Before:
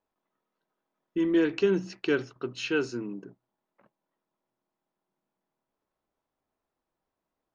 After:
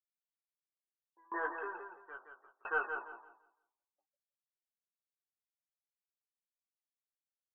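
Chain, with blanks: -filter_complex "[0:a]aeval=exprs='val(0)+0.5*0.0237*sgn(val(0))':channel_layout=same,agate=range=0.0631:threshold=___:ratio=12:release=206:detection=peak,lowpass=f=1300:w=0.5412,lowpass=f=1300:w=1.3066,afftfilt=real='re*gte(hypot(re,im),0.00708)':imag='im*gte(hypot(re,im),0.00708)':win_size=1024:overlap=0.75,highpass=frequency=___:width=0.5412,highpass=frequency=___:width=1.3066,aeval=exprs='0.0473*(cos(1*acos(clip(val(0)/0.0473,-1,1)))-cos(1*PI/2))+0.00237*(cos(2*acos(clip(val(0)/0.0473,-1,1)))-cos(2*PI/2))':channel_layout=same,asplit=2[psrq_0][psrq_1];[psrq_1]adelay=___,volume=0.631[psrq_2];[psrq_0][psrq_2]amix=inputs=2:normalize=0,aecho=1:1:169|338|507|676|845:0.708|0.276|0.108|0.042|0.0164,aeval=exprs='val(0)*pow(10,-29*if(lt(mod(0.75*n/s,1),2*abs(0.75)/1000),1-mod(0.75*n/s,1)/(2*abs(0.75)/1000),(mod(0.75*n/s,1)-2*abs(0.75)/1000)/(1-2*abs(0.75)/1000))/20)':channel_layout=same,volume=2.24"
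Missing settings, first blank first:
0.0282, 830, 830, 17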